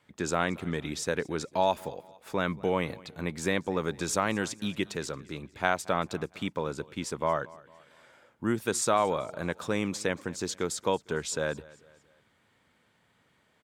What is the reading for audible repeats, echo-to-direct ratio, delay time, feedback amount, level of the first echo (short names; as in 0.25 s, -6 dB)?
2, -21.0 dB, 0.227 s, 45%, -22.0 dB